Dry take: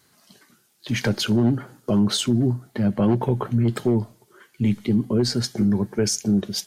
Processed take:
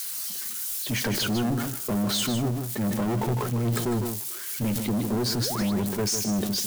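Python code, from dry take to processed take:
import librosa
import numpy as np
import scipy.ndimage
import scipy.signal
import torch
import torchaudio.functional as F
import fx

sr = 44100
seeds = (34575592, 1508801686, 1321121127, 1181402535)

p1 = x + 0.5 * 10.0 ** (-26.0 / 20.0) * np.diff(np.sign(x), prepend=np.sign(x[:1]))
p2 = fx.spec_paint(p1, sr, seeds[0], shape='rise', start_s=5.4, length_s=0.32, low_hz=250.0, high_hz=4700.0, level_db=-33.0)
p3 = 10.0 ** (-23.0 / 20.0) * np.tanh(p2 / 10.0 ** (-23.0 / 20.0))
p4 = p3 + fx.echo_single(p3, sr, ms=153, db=-9.0, dry=0)
y = fx.sustainer(p4, sr, db_per_s=40.0)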